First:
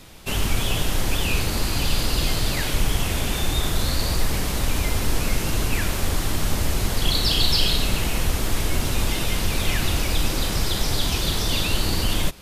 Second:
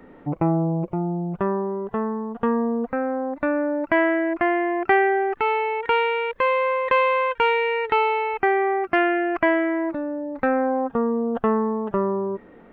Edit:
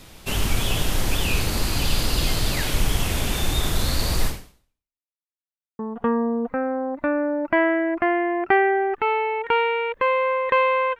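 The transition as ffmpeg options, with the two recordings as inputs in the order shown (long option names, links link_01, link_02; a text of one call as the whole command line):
ffmpeg -i cue0.wav -i cue1.wav -filter_complex "[0:a]apad=whole_dur=10.99,atrim=end=10.99,asplit=2[link_01][link_02];[link_01]atrim=end=5.05,asetpts=PTS-STARTPTS,afade=type=out:start_time=4.27:duration=0.78:curve=exp[link_03];[link_02]atrim=start=5.05:end=5.79,asetpts=PTS-STARTPTS,volume=0[link_04];[1:a]atrim=start=2.18:end=7.38,asetpts=PTS-STARTPTS,afade=type=in:duration=0.004:curve=hsin[link_05];[link_03][link_04][link_05]concat=n=3:v=0:a=1" out.wav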